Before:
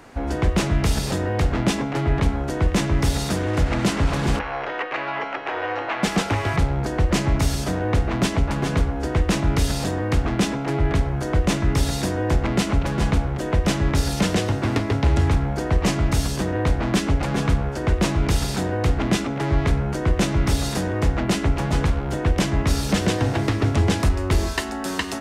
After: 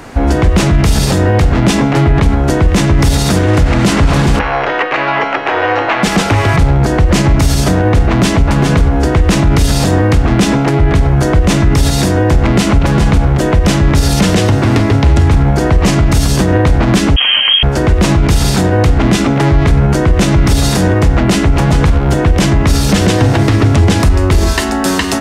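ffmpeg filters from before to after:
-filter_complex "[0:a]asettb=1/sr,asplit=3[s0][s1][s2];[s0]atrim=end=17.164[s3];[s1]atrim=start=17.16:end=17.63,asetpts=PTS-STARTPTS,afade=t=in:d=0.004:c=qsin,afade=t=out:st=0.466:d=0.004:c=qsin,lowpass=f=2800:t=q:w=0.5098,lowpass=f=2800:t=q:w=0.6013,lowpass=f=2800:t=q:w=0.9,lowpass=f=2800:t=q:w=2.563,afreqshift=-3300[s4];[s2]atrim=start=17.626[s5];[s3][s4]acrossfade=d=0.004:c1=hsin:c2=qsin[s6];[s6][s5]acrossfade=d=0.004:c1=qsin:c2=hsin,bass=f=250:g=3,treble=f=4000:g=1,alimiter=level_in=5.31:limit=0.891:release=50:level=0:latency=1,volume=0.891"

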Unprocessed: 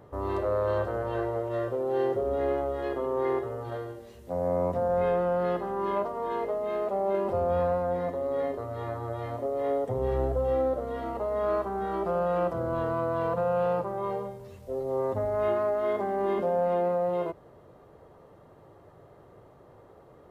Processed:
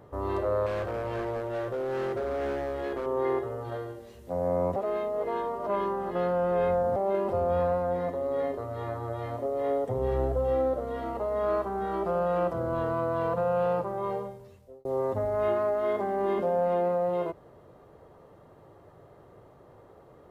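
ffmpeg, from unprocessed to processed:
-filter_complex "[0:a]asettb=1/sr,asplit=3[s0][s1][s2];[s0]atrim=end=0.664[s3];[s1]atrim=start=0.66:end=3.06,asetpts=PTS-STARTPTS,afade=t=in:d=0.004:c=qsin,afade=t=out:st=2.396:d=0.004:c=qsin,asoftclip=type=hard:threshold=0.0398[s4];[s2]atrim=start=3.056[s5];[s3][s4]acrossfade=d=0.004:c1=hsin:c2=qsin[s6];[s6][s5]acrossfade=d=0.004:c1=qsin:c2=hsin,asplit=4[s7][s8][s9][s10];[s7]atrim=end=4.762[s11];[s8]atrim=start=4.758:end=6.962,asetpts=PTS-STARTPTS,areverse[s12];[s9]atrim=start=6.958:end=14.85,asetpts=PTS-STARTPTS,afade=t=out:st=7.212:d=0.68[s13];[s10]atrim=start=14.85,asetpts=PTS-STARTPTS,afade=t=in:d=0.004:c=hsin[s14];[s11][s12]acrossfade=d=0.004:c1=hsin:c2=hsin[s15];[s13][s14]concat=n=2:v=0:a=1[s16];[s15][s16]acrossfade=d=0.004:c1=hsin:c2=hsin"

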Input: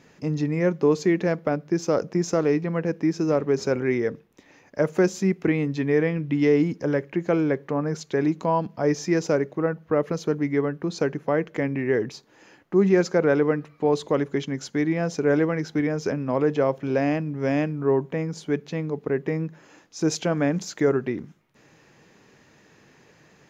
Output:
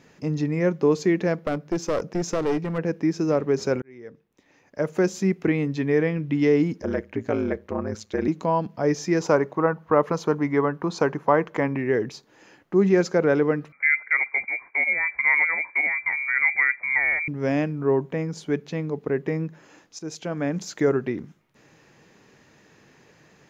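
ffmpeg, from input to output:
-filter_complex "[0:a]asplit=3[s0][s1][s2];[s0]afade=t=out:st=1.43:d=0.02[s3];[s1]aeval=exprs='clip(val(0),-1,0.0668)':c=same,afade=t=in:st=1.43:d=0.02,afade=t=out:st=2.77:d=0.02[s4];[s2]afade=t=in:st=2.77:d=0.02[s5];[s3][s4][s5]amix=inputs=3:normalize=0,asettb=1/sr,asplit=3[s6][s7][s8];[s6]atrim=end=6.814[s9];[s7]atrim=start=6.81:end=8.28,asetpts=PTS-STARTPTS,afade=t=in:d=0.004:c=qsin,afade=t=out:st=1.466:d=0.004:c=qsin,aeval=exprs='val(0)*sin(2*PI*57*n/s)':c=same[s10];[s8]atrim=start=8.276[s11];[s9][s10]acrossfade=d=0.004:c1=hsin:c2=qsin[s12];[s12][s11]acrossfade=d=0.004:c1=qsin:c2=hsin,asettb=1/sr,asplit=3[s13][s14][s15];[s13]atrim=end=9.204[s16];[s14]atrim=start=9.2:end=11.77,asetpts=PTS-STARTPTS,afade=t=in:d=0.004:c=qsin,afade=t=out:st=2.566:d=0.004:c=qsin,equalizer=f=1000:w=1.6:g=12.5[s17];[s15]atrim=start=11.766[s18];[s16][s17]acrossfade=d=0.004:c1=hsin:c2=qsin[s19];[s19][s18]acrossfade=d=0.004:c1=qsin:c2=hsin,asettb=1/sr,asplit=3[s20][s21][s22];[s20]atrim=end=13.724[s23];[s21]atrim=start=13.72:end=17.28,asetpts=PTS-STARTPTS,afade=t=in:d=0.004:c=qsin,afade=t=out:st=3.556:d=0.004:c=qsin,lowpass=f=2100:t=q:w=0.5098,lowpass=f=2100:t=q:w=0.6013,lowpass=f=2100:t=q:w=0.9,lowpass=f=2100:t=q:w=2.563,afreqshift=-2500[s24];[s22]atrim=start=17.276[s25];[s23][s24]acrossfade=d=0.004:c1=hsin:c2=qsin[s26];[s26][s25]acrossfade=d=0.004:c1=qsin:c2=hsin,asplit=3[s27][s28][s29];[s27]atrim=end=3.82,asetpts=PTS-STARTPTS,afade=t=out:st=3.816:d=0.004:c=hsin[s30];[s28]atrim=start=3.82:end=19.99,asetpts=PTS-STARTPTS,afade=t=in:d=1.42,afade=t=out:st=16.166:d=0.004:c=hsin:silence=0.188365[s31];[s29]atrim=start=19.99,asetpts=PTS-STARTPTS,afade=t=in:d=0.78:silence=0.188365[s32];[s30][s31][s32]concat=n=3:v=0:a=1"

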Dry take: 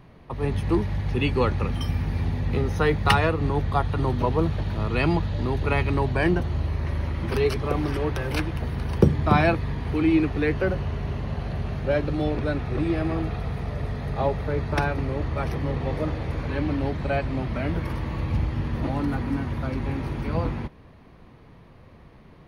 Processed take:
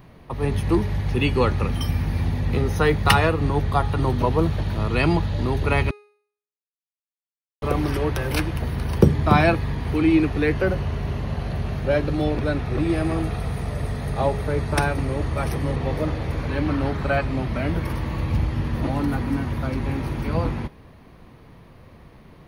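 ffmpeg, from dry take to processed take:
-filter_complex "[0:a]asettb=1/sr,asplit=3[s0][s1][s2];[s0]atrim=end=12.894[s3];[s1]atrim=start=12.89:end=15.76,asetpts=PTS-STARTPTS,afade=t=in:d=0.004:c=qsin,afade=t=out:st=2.866:d=0.004:c=qsin,equalizer=f=8700:t=o:w=0.62:g=10[s4];[s2]atrim=start=15.756[s5];[s3][s4]acrossfade=d=0.004:c1=hsin:c2=qsin[s6];[s6][s5]acrossfade=d=0.004:c1=qsin:c2=hsin,asettb=1/sr,asplit=3[s7][s8][s9];[s7]atrim=end=16.664[s10];[s8]atrim=start=16.66:end=17.23,asetpts=PTS-STARTPTS,afade=t=in:d=0.004:c=qsin,afade=t=out:st=0.566:d=0.004:c=qsin,equalizer=f=1300:t=o:w=0.57:g=7.5[s11];[s9]atrim=start=17.226[s12];[s10][s11]acrossfade=d=0.004:c1=hsin:c2=qsin[s13];[s13][s12]acrossfade=d=0.004:c1=qsin:c2=hsin,asplit=3[s14][s15][s16];[s14]atrim=end=5.91,asetpts=PTS-STARTPTS,afade=t=out:st=5.906:d=0.004:c=hsin[s17];[s15]atrim=start=5.91:end=7.62,asetpts=PTS-STARTPTS,volume=0[s18];[s16]atrim=start=7.62,asetpts=PTS-STARTPTS,afade=t=in:d=0.004:c=hsin[s19];[s17][s18][s19]concat=n=3:v=0:a=1,highshelf=f=9000:g=11,bandreject=f=414.5:t=h:w=4,bandreject=f=829:t=h:w=4,bandreject=f=1243.5:t=h:w=4,bandreject=f=1658:t=h:w=4,bandreject=f=2072.5:t=h:w=4,bandreject=f=2487:t=h:w=4,bandreject=f=2901.5:t=h:w=4,bandreject=f=3316:t=h:w=4,bandreject=f=3730.5:t=h:w=4,bandreject=f=4145:t=h:w=4,bandreject=f=4559.5:t=h:w=4,bandreject=f=4974:t=h:w=4,bandreject=f=5388.5:t=h:w=4,bandreject=f=5803:t=h:w=4,bandreject=f=6217.5:t=h:w=4,bandreject=f=6632:t=h:w=4,bandreject=f=7046.5:t=h:w=4,bandreject=f=7461:t=h:w=4,bandreject=f=7875.5:t=h:w=4,bandreject=f=8290:t=h:w=4,bandreject=f=8704.5:t=h:w=4,bandreject=f=9119:t=h:w=4,bandreject=f=9533.5:t=h:w=4,bandreject=f=9948:t=h:w=4,bandreject=f=10362.5:t=h:w=4,bandreject=f=10777:t=h:w=4,bandreject=f=11191.5:t=h:w=4,bandreject=f=11606:t=h:w=4,volume=1.33"

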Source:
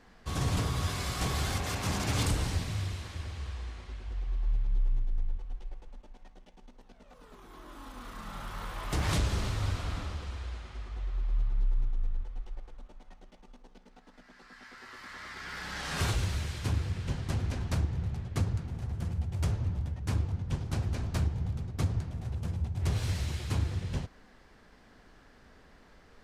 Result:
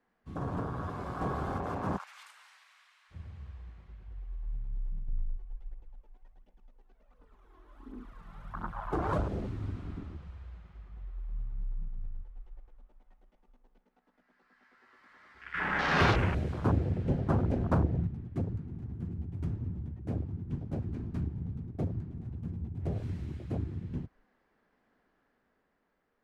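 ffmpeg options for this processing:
-filter_complex "[0:a]asplit=3[s0][s1][s2];[s0]afade=t=out:st=1.96:d=0.02[s3];[s1]highpass=f=1100:w=0.5412,highpass=f=1100:w=1.3066,afade=t=in:st=1.96:d=0.02,afade=t=out:st=3.1:d=0.02[s4];[s2]afade=t=in:st=3.1:d=0.02[s5];[s3][s4][s5]amix=inputs=3:normalize=0,asettb=1/sr,asplit=3[s6][s7][s8];[s6]atrim=end=5.084[s9];[s7]atrim=start=5.08:end=9.23,asetpts=PTS-STARTPTS,afade=t=in:d=0.004:c=qsin,afade=t=out:st=4.146:d=0.004:c=qsin,aphaser=in_gain=1:out_gain=1:delay=3:decay=0.5:speed=1.4:type=triangular[s10];[s8]atrim=start=9.226[s11];[s9][s10]acrossfade=d=0.004:c1=hsin:c2=qsin[s12];[s12][s11]acrossfade=d=0.004:c1=qsin:c2=hsin,asettb=1/sr,asplit=3[s13][s14][s15];[s13]atrim=end=15.544[s16];[s14]atrim=start=15.54:end=18.07,asetpts=PTS-STARTPTS,afade=t=in:d=0.004:c=qsin,afade=t=out:st=2.526:d=0.004:c=qsin,acontrast=76[s17];[s15]atrim=start=18.066[s18];[s16][s17]acrossfade=d=0.004:c1=hsin:c2=qsin[s19];[s19][s18]acrossfade=d=0.004:c1=qsin:c2=hsin,afwtdn=0.02,acrossover=split=160 2600:gain=0.251 1 0.251[s20][s21][s22];[s20][s21][s22]amix=inputs=3:normalize=0,dynaudnorm=f=150:g=13:m=1.58"

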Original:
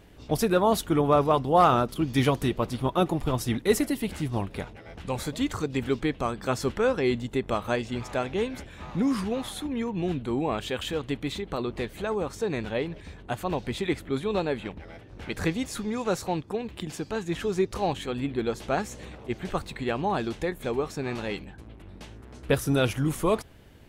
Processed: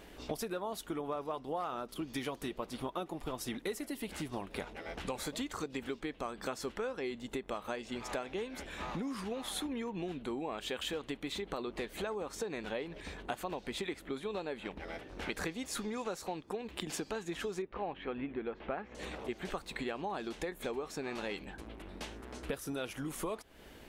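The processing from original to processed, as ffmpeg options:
-filter_complex "[0:a]asettb=1/sr,asplit=3[s0][s1][s2];[s0]atrim=end=17.624[s3];[s1]atrim=start=17.62:end=18.95,asetpts=PTS-STARTPTS,afade=t=in:d=0.004:c=qsin,afade=t=out:st=1.326:d=0.004:c=qsin,lowpass=f=2600:w=0.5412,lowpass=f=2600:w=1.3066[s4];[s2]atrim=start=18.946[s5];[s3][s4]acrossfade=d=0.004:c1=hsin:c2=qsin[s6];[s6][s5]acrossfade=d=0.004:c1=qsin:c2=hsin,equalizer=f=110:t=o:w=0.97:g=-11.5,acompressor=threshold=0.0141:ratio=16,lowshelf=f=210:g=-5,volume=1.5"

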